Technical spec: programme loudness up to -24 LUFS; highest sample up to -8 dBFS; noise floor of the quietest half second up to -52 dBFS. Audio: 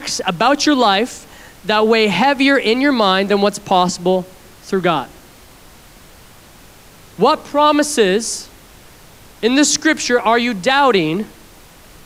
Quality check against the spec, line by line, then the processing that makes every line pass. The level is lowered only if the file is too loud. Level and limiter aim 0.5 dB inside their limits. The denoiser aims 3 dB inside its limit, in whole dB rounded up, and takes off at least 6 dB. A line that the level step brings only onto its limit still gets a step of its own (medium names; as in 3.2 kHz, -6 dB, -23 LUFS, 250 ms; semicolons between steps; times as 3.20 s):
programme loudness -15.0 LUFS: fail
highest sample -2.0 dBFS: fail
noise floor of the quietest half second -43 dBFS: fail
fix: trim -9.5 dB